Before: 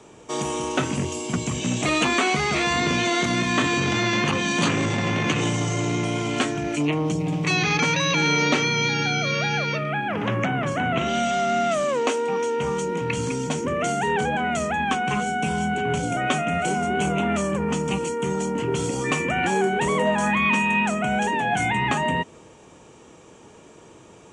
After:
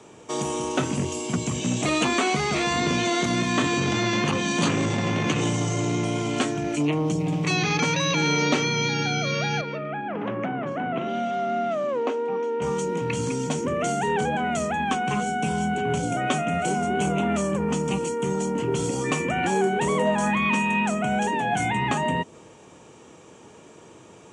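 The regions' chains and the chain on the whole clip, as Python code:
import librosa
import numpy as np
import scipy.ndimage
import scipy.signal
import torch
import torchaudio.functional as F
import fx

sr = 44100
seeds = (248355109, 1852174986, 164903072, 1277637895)

y = fx.chain(x, sr, fx.highpass(hz=210.0, slope=12),
    fx.spacing_loss(db_at_10k=29), at=(9.61, 12.62))
y = scipy.signal.sosfilt(scipy.signal.butter(2, 76.0, 'highpass', fs=sr, output='sos'), y)
y = fx.dynamic_eq(y, sr, hz=2000.0, q=0.77, threshold_db=-36.0, ratio=4.0, max_db=-4)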